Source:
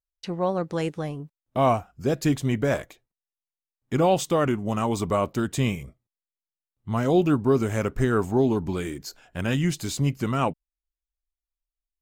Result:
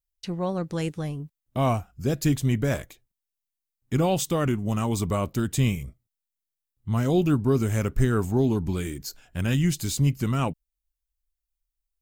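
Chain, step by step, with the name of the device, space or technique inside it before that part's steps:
smiley-face EQ (low-shelf EQ 130 Hz +7.5 dB; parametric band 730 Hz −5.5 dB 2.6 octaves; high-shelf EQ 9,500 Hz +8.5 dB)

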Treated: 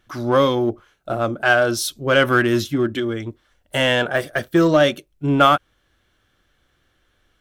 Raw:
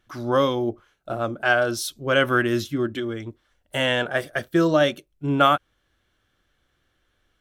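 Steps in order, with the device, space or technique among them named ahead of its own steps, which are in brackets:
0:04.01–0:04.70: de-essing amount 80%
parallel distortion (in parallel at −9 dB: hard clipping −21.5 dBFS, distortion −7 dB)
on the sum: level +2.5 dB

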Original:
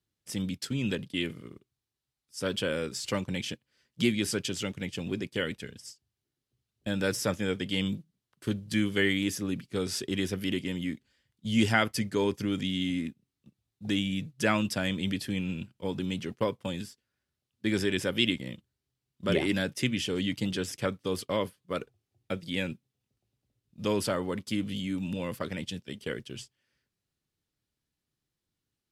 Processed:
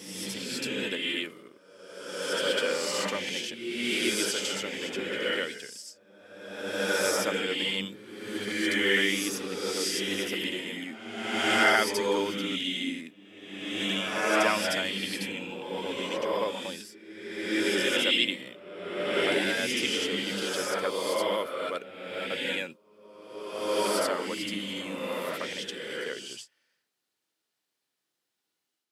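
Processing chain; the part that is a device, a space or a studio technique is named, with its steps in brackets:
ghost voice (reversed playback; convolution reverb RT60 1.5 s, pre-delay 61 ms, DRR −4.5 dB; reversed playback; high-pass filter 430 Hz 12 dB per octave)

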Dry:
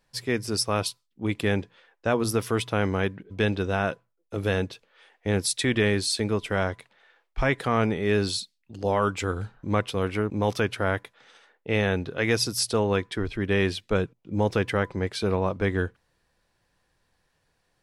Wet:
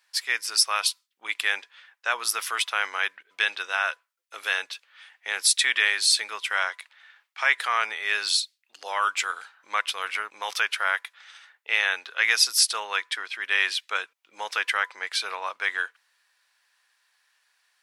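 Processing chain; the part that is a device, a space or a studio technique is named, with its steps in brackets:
high-pass filter 1,400 Hz 12 dB per octave
filter by subtraction (in parallel: low-pass filter 1,200 Hz 12 dB per octave + polarity inversion)
on the sum: level +6.5 dB

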